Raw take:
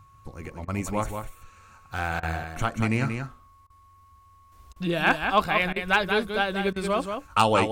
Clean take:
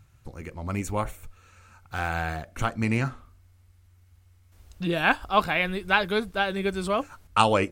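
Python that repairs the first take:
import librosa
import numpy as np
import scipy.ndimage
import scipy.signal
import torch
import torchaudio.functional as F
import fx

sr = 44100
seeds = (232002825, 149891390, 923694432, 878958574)

y = fx.fix_declip(x, sr, threshold_db=-8.0)
y = fx.notch(y, sr, hz=1100.0, q=30.0)
y = fx.fix_interpolate(y, sr, at_s=(0.65, 2.2, 3.67, 4.73, 5.73, 6.73), length_ms=29.0)
y = fx.fix_echo_inverse(y, sr, delay_ms=182, level_db=-6.5)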